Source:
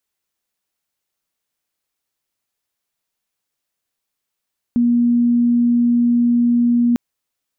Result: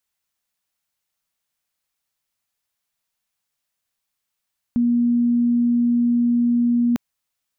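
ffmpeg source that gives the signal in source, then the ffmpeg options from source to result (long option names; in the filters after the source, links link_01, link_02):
-f lavfi -i "aevalsrc='0.266*sin(2*PI*239*t)':duration=2.2:sample_rate=44100"
-af "equalizer=frequency=370:width_type=o:width=1.1:gain=-7.5"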